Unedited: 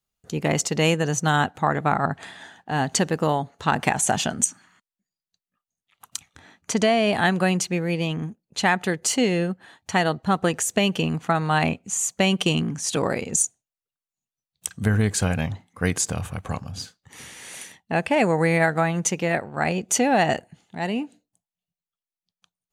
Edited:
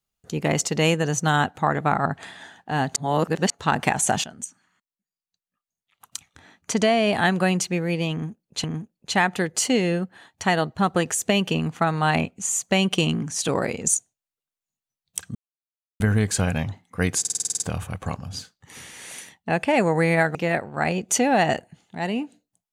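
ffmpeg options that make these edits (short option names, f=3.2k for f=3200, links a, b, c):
-filter_complex "[0:a]asplit=15[a][b][c][d][e][f][g][h][i][j][k][l][m][n][o];[a]atrim=end=2.962[p];[b]atrim=start=2.958:end=3.502,asetpts=PTS-STARTPTS,areverse[q];[c]atrim=start=3.498:end=4.24,asetpts=PTS-STARTPTS,afade=t=out:st=0.738:d=0.004:c=hsin:silence=0.177828[r];[d]atrim=start=4.24:end=8.642,asetpts=PTS-STARTPTS,afade=t=in:d=2.54:silence=0.177828[s];[e]atrim=start=8.118:end=14.83,asetpts=PTS-STARTPTS,afade=t=out:st=6.708:d=0.004:c=hsin,apad=pad_dur=0.65[t];[f]atrim=start=14.83:end=16.082,asetpts=PTS-STARTPTS,afade=t=in:d=0.004:c=hsin[u];[g]atrim=start=16.028:end=16.082[v];[h]atrim=start=16.028:end=16.082[w];[i]atrim=start=16.028:end=16.082[x];[j]atrim=start=16.028:end=16.082[y];[k]atrim=start=16.028:end=16.082[z];[l]atrim=start=16.028:end=16.082[aa];[m]atrim=start=16.028:end=16.082[ab];[n]atrim=start=16.028:end=18.782[ac];[o]atrim=start=19.148[ad];[p][q]acrossfade=d=0.004:c1=hsin:c2=hsin[ae];[r][s]concat=n=2:v=0:a=1[af];[ae][af]acrossfade=d=0.004:c1=hsin:c2=hsin[ag];[t][u]concat=n=2:v=0:a=1[ah];[ag][ah]acrossfade=d=0.004:c1=hsin:c2=hsin[ai];[ai][v]acrossfade=d=0.004:c1=hsin:c2=hsin[aj];[aj][w]acrossfade=d=0.004:c1=hsin:c2=hsin[ak];[ak][x]acrossfade=d=0.004:c1=hsin:c2=hsin[al];[al][y]acrossfade=d=0.004:c1=hsin:c2=hsin[am];[am][z]acrossfade=d=0.004:c1=hsin:c2=hsin[an];[an][aa]acrossfade=d=0.004:c1=hsin:c2=hsin[ao];[ao][ab]acrossfade=d=0.004:c1=hsin:c2=hsin[ap];[ap][ac]acrossfade=d=0.004:c1=hsin:c2=hsin[aq];[aq][ad]acrossfade=d=0.004:c1=hsin:c2=hsin"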